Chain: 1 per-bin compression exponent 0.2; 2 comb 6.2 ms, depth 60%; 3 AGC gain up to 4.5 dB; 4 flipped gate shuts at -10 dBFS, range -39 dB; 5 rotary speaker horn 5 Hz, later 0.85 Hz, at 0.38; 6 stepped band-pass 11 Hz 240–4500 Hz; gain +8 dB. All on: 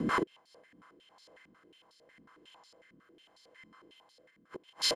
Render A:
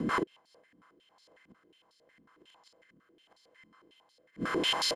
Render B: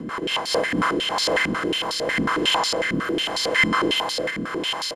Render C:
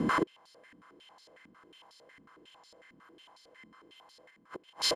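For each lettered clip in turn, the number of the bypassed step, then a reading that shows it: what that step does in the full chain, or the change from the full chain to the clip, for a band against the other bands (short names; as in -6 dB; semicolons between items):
3, momentary loudness spread change -9 LU; 4, momentary loudness spread change -14 LU; 5, 4 kHz band -1.5 dB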